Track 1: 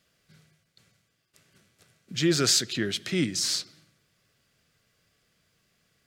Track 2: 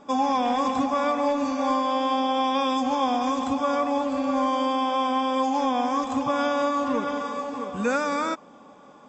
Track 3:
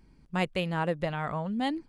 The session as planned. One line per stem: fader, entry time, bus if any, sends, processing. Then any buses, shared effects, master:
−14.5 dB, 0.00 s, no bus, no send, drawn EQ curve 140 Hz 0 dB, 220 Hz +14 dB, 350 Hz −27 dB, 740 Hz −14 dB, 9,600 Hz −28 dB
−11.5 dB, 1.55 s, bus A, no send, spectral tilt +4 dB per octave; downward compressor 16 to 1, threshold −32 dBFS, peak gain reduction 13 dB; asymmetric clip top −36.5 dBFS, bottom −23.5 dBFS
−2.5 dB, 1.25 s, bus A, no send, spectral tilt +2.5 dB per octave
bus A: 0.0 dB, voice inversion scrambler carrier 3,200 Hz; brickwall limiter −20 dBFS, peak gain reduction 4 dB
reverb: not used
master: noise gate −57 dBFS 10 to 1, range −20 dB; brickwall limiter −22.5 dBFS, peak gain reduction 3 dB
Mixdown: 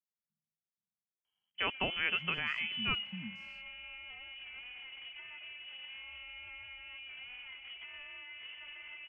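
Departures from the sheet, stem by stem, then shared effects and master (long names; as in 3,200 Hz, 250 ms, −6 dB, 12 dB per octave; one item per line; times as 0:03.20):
stem 1 −14.5 dB → −22.5 dB
stem 2: missing spectral tilt +4 dB per octave
master: missing brickwall limiter −22.5 dBFS, peak gain reduction 3 dB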